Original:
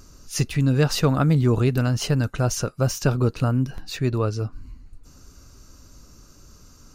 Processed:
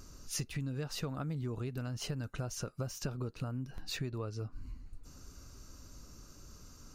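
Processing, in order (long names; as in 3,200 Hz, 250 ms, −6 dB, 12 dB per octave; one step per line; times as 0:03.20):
downward compressor 10 to 1, threshold −30 dBFS, peak gain reduction 16.5 dB
level −4.5 dB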